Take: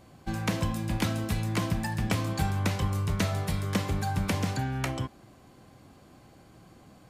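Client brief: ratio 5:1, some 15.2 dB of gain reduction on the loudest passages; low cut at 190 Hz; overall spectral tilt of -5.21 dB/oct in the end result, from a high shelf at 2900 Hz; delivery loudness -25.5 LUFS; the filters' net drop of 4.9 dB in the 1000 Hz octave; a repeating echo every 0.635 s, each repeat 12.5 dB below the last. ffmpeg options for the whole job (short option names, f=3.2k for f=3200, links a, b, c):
-af "highpass=190,equalizer=f=1k:t=o:g=-6,highshelf=f=2.9k:g=-5,acompressor=threshold=-45dB:ratio=5,aecho=1:1:635|1270|1905:0.237|0.0569|0.0137,volume=22.5dB"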